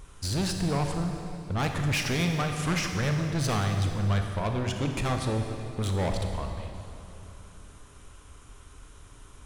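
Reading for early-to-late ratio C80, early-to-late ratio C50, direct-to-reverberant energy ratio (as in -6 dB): 5.5 dB, 4.5 dB, 4.0 dB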